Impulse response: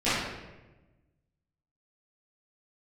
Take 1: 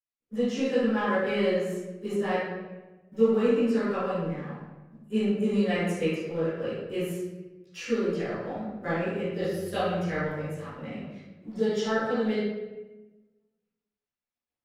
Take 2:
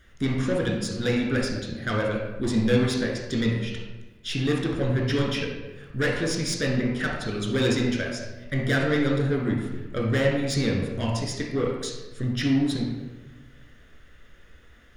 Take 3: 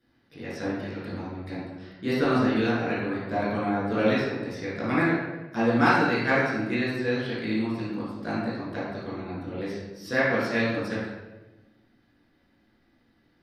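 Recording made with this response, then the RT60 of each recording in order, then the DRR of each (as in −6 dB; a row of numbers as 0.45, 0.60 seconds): 1; 1.1, 1.1, 1.1 seconds; −16.5, −2.5, −10.5 decibels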